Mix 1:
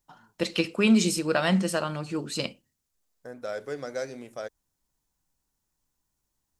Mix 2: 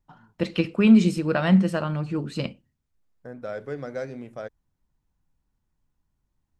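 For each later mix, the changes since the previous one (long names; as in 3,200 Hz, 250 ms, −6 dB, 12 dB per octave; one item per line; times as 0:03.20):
master: add bass and treble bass +9 dB, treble −13 dB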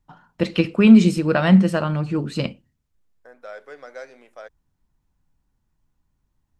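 first voice +4.5 dB
second voice: add high-pass filter 670 Hz 12 dB per octave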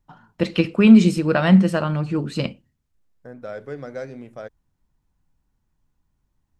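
second voice: remove high-pass filter 670 Hz 12 dB per octave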